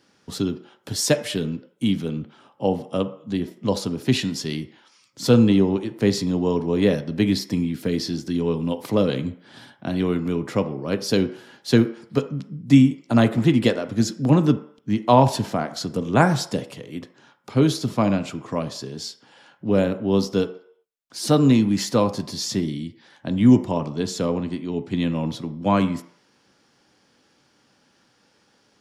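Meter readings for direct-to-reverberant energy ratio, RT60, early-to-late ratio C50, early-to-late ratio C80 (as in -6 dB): 10.0 dB, 0.60 s, 14.0 dB, 17.5 dB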